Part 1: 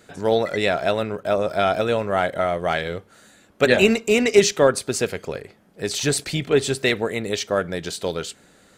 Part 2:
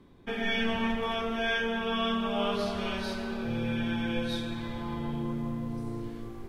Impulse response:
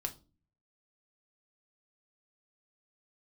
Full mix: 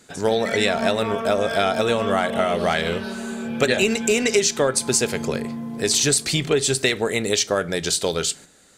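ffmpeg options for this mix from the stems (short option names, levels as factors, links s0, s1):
-filter_complex "[0:a]equalizer=f=7500:t=o:w=1.9:g=9.5,volume=1.12,asplit=2[s0][s1];[s1]volume=0.355[s2];[1:a]highpass=110,equalizer=f=6400:w=1.1:g=-6.5,aecho=1:1:4.6:0.57,volume=1.26[s3];[2:a]atrim=start_sample=2205[s4];[s2][s4]afir=irnorm=-1:irlink=0[s5];[s0][s3][s5]amix=inputs=3:normalize=0,agate=range=0.447:threshold=0.0126:ratio=16:detection=peak,acompressor=threshold=0.158:ratio=5"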